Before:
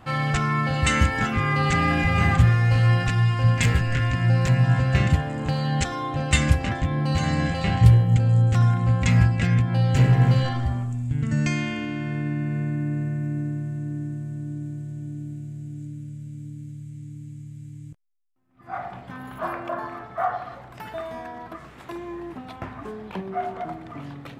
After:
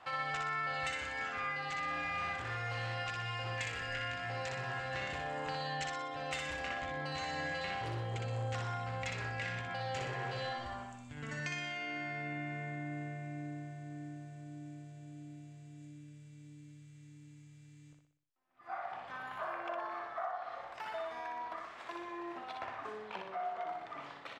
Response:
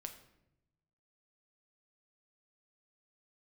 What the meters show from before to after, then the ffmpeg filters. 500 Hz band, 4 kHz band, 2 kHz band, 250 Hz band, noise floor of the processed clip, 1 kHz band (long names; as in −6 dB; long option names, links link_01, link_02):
−10.5 dB, −10.0 dB, −9.5 dB, −21.0 dB, −56 dBFS, −9.5 dB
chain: -filter_complex "[0:a]volume=14dB,asoftclip=hard,volume=-14dB,acrossover=split=480 7300:gain=0.0891 1 0.112[link_01][link_02][link_03];[link_01][link_02][link_03]amix=inputs=3:normalize=0,acompressor=threshold=-34dB:ratio=6,asplit=2[link_04][link_05];[link_05]aecho=0:1:61|122|183|244|305|366:0.631|0.309|0.151|0.0742|0.0364|0.0178[link_06];[link_04][link_06]amix=inputs=2:normalize=0,volume=-4dB"